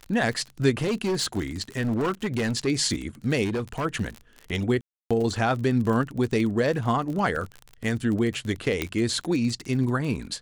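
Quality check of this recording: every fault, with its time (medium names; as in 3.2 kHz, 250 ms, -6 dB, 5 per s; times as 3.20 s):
crackle 37 per s -30 dBFS
0.71–2.68 s: clipped -21.5 dBFS
3.44–3.86 s: clipped -23.5 dBFS
4.81–5.11 s: dropout 296 ms
7.36 s: dropout 2.6 ms
8.82 s: pop -11 dBFS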